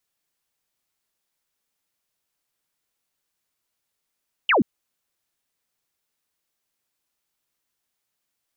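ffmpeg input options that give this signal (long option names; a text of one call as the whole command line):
ffmpeg -f lavfi -i "aevalsrc='0.188*clip(t/0.002,0,1)*clip((0.13-t)/0.002,0,1)*sin(2*PI*3200*0.13/log(180/3200)*(exp(log(180/3200)*t/0.13)-1))':duration=0.13:sample_rate=44100" out.wav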